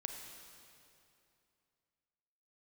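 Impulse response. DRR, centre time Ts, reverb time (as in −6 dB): 3.5 dB, 66 ms, 2.7 s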